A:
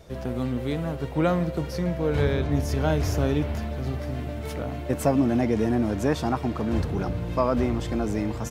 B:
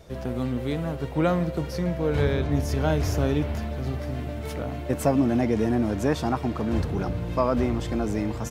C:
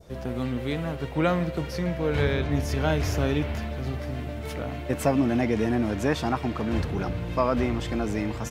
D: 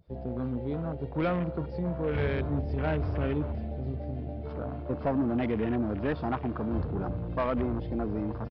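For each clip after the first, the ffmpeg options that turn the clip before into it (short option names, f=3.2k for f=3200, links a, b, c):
-af anull
-af "adynamicequalizer=threshold=0.00631:dfrequency=2400:dqfactor=0.78:tfrequency=2400:tqfactor=0.78:attack=5:release=100:ratio=0.375:range=3:mode=boostabove:tftype=bell,volume=-1.5dB"
-af "afwtdn=0.02,aresample=11025,asoftclip=type=tanh:threshold=-18dB,aresample=44100,volume=-2.5dB"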